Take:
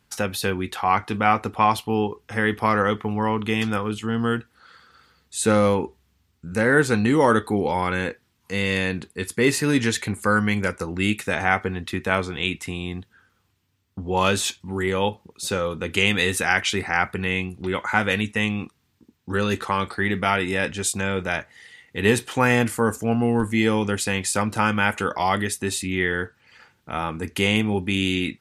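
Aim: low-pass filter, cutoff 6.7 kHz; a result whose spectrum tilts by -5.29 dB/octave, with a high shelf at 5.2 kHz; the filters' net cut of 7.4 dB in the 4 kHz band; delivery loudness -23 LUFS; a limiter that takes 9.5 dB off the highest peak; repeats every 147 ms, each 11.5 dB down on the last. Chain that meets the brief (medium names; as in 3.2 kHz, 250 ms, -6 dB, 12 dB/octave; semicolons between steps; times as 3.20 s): low-pass 6.7 kHz; peaking EQ 4 kHz -7.5 dB; treble shelf 5.2 kHz -6.5 dB; peak limiter -14 dBFS; feedback delay 147 ms, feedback 27%, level -11.5 dB; trim +3.5 dB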